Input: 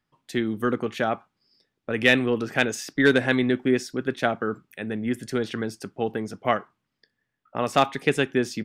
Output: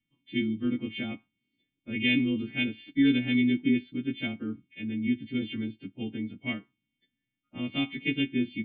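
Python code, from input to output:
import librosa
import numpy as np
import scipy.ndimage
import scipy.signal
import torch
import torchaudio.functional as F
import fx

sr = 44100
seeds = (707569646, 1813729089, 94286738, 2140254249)

p1 = fx.freq_snap(x, sr, grid_st=2)
p2 = fx.peak_eq(p1, sr, hz=390.0, db=-11.0, octaves=1.7)
p3 = 10.0 ** (-20.0 / 20.0) * np.tanh(p2 / 10.0 ** (-20.0 / 20.0))
p4 = p2 + (p3 * 10.0 ** (-5.5 / 20.0))
p5 = fx.formant_cascade(p4, sr, vowel='i')
p6 = fx.small_body(p5, sr, hz=(330.0, 2200.0), ring_ms=65, db=6)
y = p6 * 10.0 ** (6.5 / 20.0)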